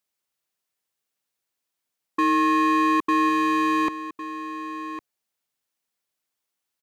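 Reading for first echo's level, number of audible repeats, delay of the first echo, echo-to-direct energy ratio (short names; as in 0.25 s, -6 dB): -13.0 dB, 1, 1.106 s, -13.0 dB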